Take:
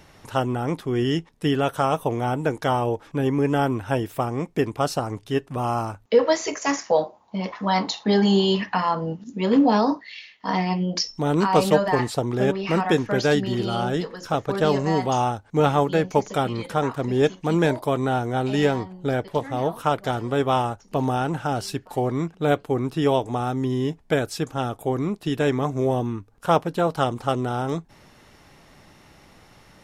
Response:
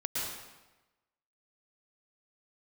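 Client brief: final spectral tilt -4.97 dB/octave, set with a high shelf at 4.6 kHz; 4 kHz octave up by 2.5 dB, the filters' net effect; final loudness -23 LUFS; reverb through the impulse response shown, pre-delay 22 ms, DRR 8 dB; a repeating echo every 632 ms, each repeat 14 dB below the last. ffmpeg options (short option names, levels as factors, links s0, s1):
-filter_complex "[0:a]equalizer=f=4000:t=o:g=6.5,highshelf=f=4600:g=-6,aecho=1:1:632|1264:0.2|0.0399,asplit=2[s0][s1];[1:a]atrim=start_sample=2205,adelay=22[s2];[s1][s2]afir=irnorm=-1:irlink=0,volume=0.211[s3];[s0][s3]amix=inputs=2:normalize=0,volume=0.944"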